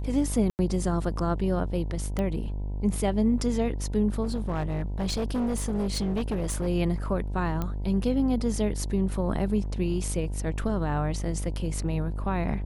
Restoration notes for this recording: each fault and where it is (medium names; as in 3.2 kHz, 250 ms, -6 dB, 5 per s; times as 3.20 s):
buzz 50 Hz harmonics 20 -31 dBFS
0.50–0.59 s: dropout 89 ms
2.19 s: pop -18 dBFS
4.23–6.68 s: clipped -24 dBFS
7.62 s: pop -17 dBFS